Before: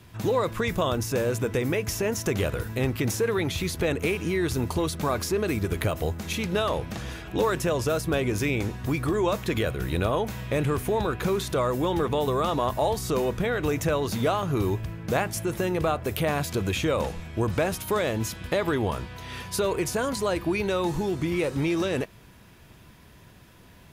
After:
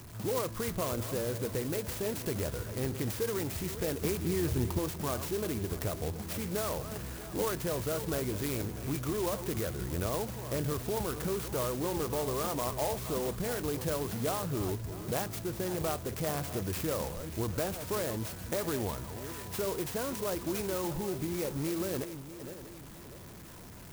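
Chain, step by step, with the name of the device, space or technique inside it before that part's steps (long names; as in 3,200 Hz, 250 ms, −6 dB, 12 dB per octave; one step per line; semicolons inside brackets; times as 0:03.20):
feedback delay that plays each chunk backwards 322 ms, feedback 45%, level −12 dB
0:04.01–0:04.79: low-shelf EQ 270 Hz +7 dB
early CD player with a faulty converter (converter with a step at zero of −35.5 dBFS; converter with an unsteady clock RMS 0.1 ms)
level −9 dB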